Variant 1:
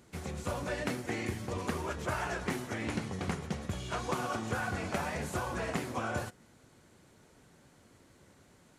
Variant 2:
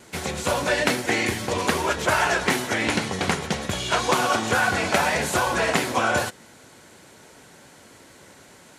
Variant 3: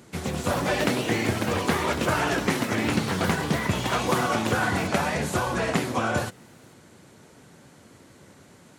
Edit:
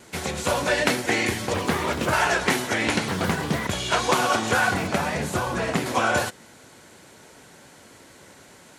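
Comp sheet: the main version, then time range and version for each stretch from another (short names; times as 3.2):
2
1.54–2.13 from 3
3.08–3.67 from 3
4.74–5.86 from 3
not used: 1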